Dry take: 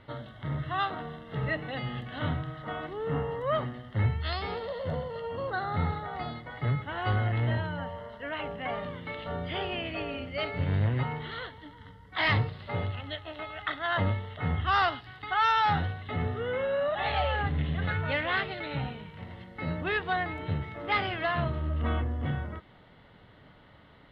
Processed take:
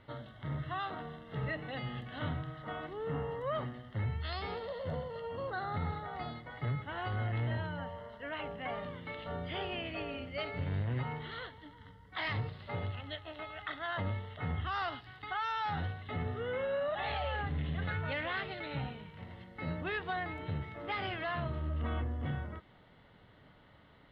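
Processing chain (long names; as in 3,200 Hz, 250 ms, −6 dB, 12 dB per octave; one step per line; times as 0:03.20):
brickwall limiter −22 dBFS, peak gain reduction 7.5 dB
level −5 dB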